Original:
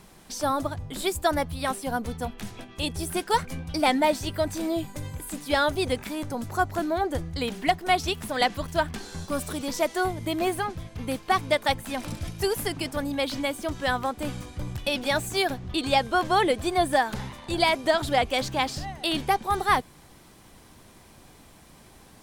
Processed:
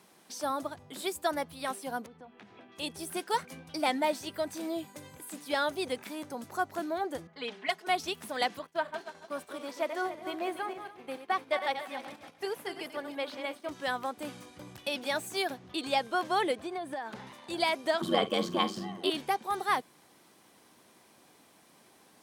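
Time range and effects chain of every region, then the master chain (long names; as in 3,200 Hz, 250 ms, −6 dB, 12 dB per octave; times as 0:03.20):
0:02.06–0:02.72: low-pass filter 2,600 Hz + downward compressor 5 to 1, threshold −38 dBFS
0:07.27–0:07.87: high-pass filter 670 Hz 6 dB per octave + low-pass that shuts in the quiet parts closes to 1,500 Hz, open at −21.5 dBFS + comb filter 4.7 ms, depth 97%
0:08.59–0:13.69: feedback delay that plays each chunk backwards 143 ms, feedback 53%, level −8 dB + bass and treble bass −11 dB, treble −10 dB + downward expander −36 dBFS
0:16.55–0:17.27: low-pass filter 2,800 Hz 6 dB per octave + downward compressor 12 to 1, threshold −25 dBFS
0:18.01–0:19.10: ring modulation 46 Hz + double-tracking delay 47 ms −14 dB + hollow resonant body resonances 200/360/1,100/3,100 Hz, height 17 dB, ringing for 40 ms
whole clip: high-pass filter 240 Hz 12 dB per octave; notch filter 7,300 Hz, Q 28; level −6.5 dB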